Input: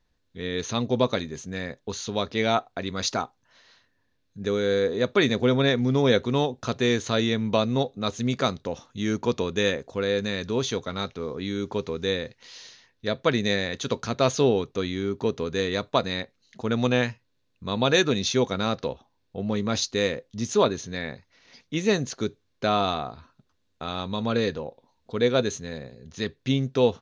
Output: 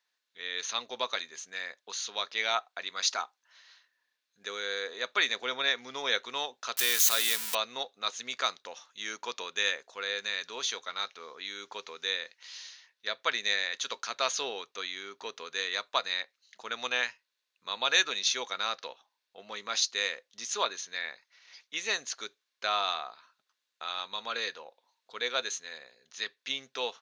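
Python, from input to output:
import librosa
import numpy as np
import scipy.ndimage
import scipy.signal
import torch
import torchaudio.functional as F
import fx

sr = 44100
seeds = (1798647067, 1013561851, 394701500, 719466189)

y = fx.crossing_spikes(x, sr, level_db=-16.0, at=(6.77, 7.55))
y = scipy.signal.sosfilt(scipy.signal.butter(2, 1200.0, 'highpass', fs=sr, output='sos'), y)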